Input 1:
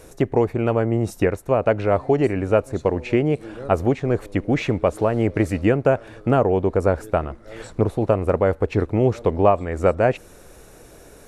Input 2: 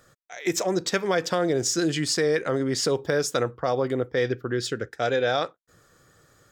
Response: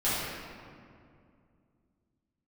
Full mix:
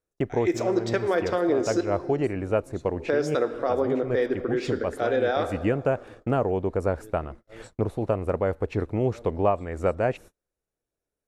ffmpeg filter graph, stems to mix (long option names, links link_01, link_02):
-filter_complex "[0:a]volume=-6.5dB[link_01];[1:a]lowpass=frequency=1600:poles=1,lowshelf=frequency=190:width_type=q:width=1.5:gain=-12,volume=-1.5dB,asplit=3[link_02][link_03][link_04];[link_02]atrim=end=1.81,asetpts=PTS-STARTPTS,afade=type=out:start_time=1.806:duration=0.004:curve=hsin[link_05];[link_03]atrim=start=1.81:end=3,asetpts=PTS-STARTPTS,volume=0[link_06];[link_04]atrim=start=3,asetpts=PTS-STARTPTS,afade=type=in:duration=0.004:curve=hsin[link_07];[link_05][link_06][link_07]concat=n=3:v=0:a=1,asplit=3[link_08][link_09][link_10];[link_09]volume=-19.5dB[link_11];[link_10]apad=whole_len=497424[link_12];[link_01][link_12]sidechaincompress=threshold=-33dB:ratio=4:attack=25:release=144[link_13];[2:a]atrim=start_sample=2205[link_14];[link_11][link_14]afir=irnorm=-1:irlink=0[link_15];[link_13][link_08][link_15]amix=inputs=3:normalize=0,agate=range=-36dB:threshold=-43dB:ratio=16:detection=peak"